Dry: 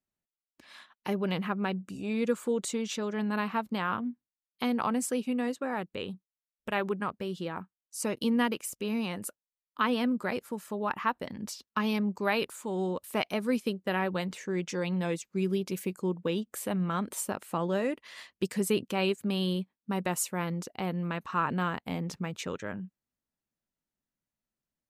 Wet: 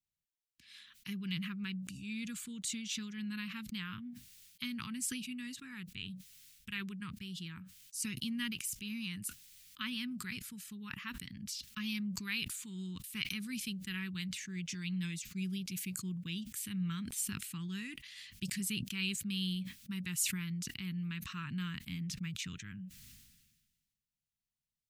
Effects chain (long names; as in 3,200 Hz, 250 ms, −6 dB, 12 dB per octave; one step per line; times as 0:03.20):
Chebyshev band-stop filter 140–2,700 Hz, order 2
level that may fall only so fast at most 42 dB per second
level −1.5 dB